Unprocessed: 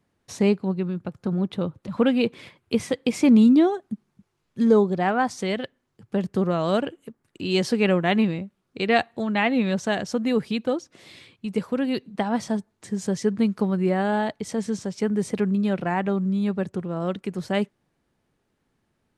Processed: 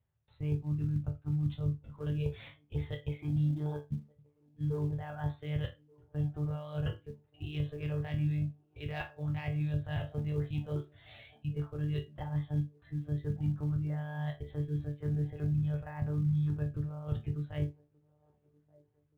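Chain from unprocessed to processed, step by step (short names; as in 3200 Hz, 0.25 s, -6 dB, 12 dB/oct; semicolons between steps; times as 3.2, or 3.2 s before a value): monotone LPC vocoder at 8 kHz 150 Hz; soft clip -5 dBFS, distortion -24 dB; reverse; compressor 8:1, threshold -29 dBFS, peak gain reduction 16.5 dB; reverse; HPF 45 Hz 12 dB/oct; resonator bank D2 sus4, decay 0.29 s; band-limited delay 1.179 s, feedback 47%, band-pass 500 Hz, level -16.5 dB; spectral noise reduction 9 dB; in parallel at -11 dB: short-mantissa float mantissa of 2-bit; on the sum: resonant low shelf 170 Hz +9 dB, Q 3; gain +3.5 dB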